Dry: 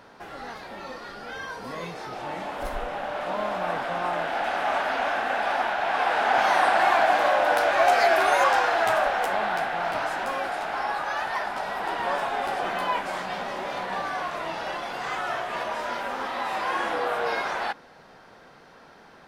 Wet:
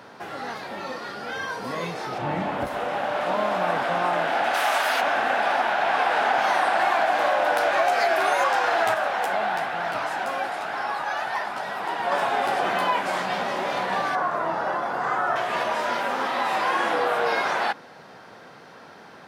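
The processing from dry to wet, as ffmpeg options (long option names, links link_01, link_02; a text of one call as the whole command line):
ffmpeg -i in.wav -filter_complex "[0:a]asettb=1/sr,asplit=3[link_01][link_02][link_03];[link_01]atrim=end=2.184[link_04];[link_02]atrim=start=2.18:end=2.67,asetpts=PTS-STARTPTS,afade=type=in:duration=0.004:curve=qsin,afade=type=out:start_time=0.486:duration=0.004:curve=qsin,bass=frequency=250:gain=11,treble=frequency=4000:gain=-8[link_05];[link_03]atrim=start=2.666[link_06];[link_04][link_05]acrossfade=duration=0.004:curve1=hsin:curve2=qsin[link_07];[link_07][link_06]acrossfade=duration=0.004:curve1=qsin:curve2=hsin,asplit=3[link_08][link_09][link_10];[link_08]afade=type=out:start_time=4.53:duration=0.02[link_11];[link_09]aemphasis=mode=production:type=riaa,afade=type=in:start_time=4.53:duration=0.02,afade=type=out:start_time=5:duration=0.02[link_12];[link_10]afade=type=in:start_time=5:duration=0.02[link_13];[link_11][link_12][link_13]amix=inputs=3:normalize=0,asettb=1/sr,asplit=3[link_14][link_15][link_16];[link_14]atrim=end=8.944[link_17];[link_15]atrim=start=8.94:end=12.12,asetpts=PTS-STARTPTS,afade=type=in:duration=0.004:curve=qsin,afade=type=out:start_time=3.176:duration=0.004:curve=qsin,flanger=delay=0.5:depth=1:regen=74:speed=1.1:shape=triangular[link_18];[link_16]atrim=start=12.116[link_19];[link_17][link_18]acrossfade=duration=0.004:curve1=hsin:curve2=qsin[link_20];[link_20][link_19]acrossfade=duration=0.004:curve1=qsin:curve2=hsin,asettb=1/sr,asplit=3[link_21][link_22][link_23];[link_21]atrim=end=14.154[link_24];[link_22]atrim=start=14.15:end=15.36,asetpts=PTS-STARTPTS,afade=type=in:duration=0.004:curve=qsin,afade=type=out:start_time=1.206:duration=0.004:curve=qsin,highshelf=frequency=1900:width_type=q:width=1.5:gain=-9.5[link_25];[link_23]atrim=start=15.356[link_26];[link_24][link_25]acrossfade=duration=0.004:curve1=hsin:curve2=qsin[link_27];[link_27][link_26]acrossfade=duration=0.004:curve1=qsin:curve2=hsin,acompressor=threshold=-23dB:ratio=6,highpass=frequency=90:width=0.5412,highpass=frequency=90:width=1.3066,volume=5dB" out.wav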